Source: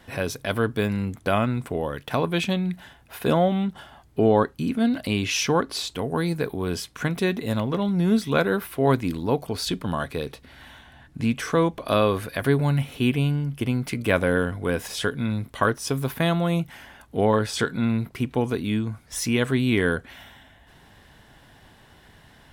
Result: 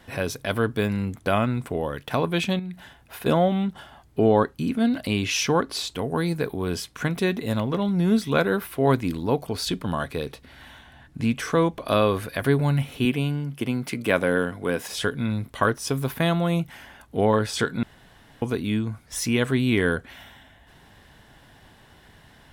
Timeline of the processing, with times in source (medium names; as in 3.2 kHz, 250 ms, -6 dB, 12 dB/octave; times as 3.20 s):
2.59–3.26 s: compression 2.5:1, threshold -34 dBFS
13.05–14.92 s: high-pass 150 Hz
17.83–18.42 s: room tone